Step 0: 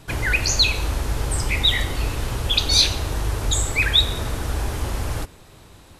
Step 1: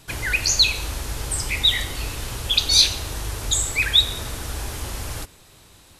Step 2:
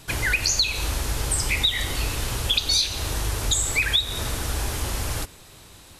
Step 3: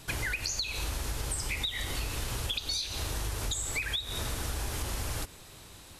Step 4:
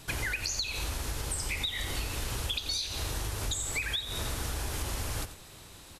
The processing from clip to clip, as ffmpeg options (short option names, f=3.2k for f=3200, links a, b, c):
-af "highshelf=f=2.2k:g=9.5,volume=-6dB"
-af "acompressor=threshold=-21dB:ratio=10,volume=3dB"
-af "acompressor=threshold=-27dB:ratio=6,volume=-3dB"
-af "aecho=1:1:88:0.237"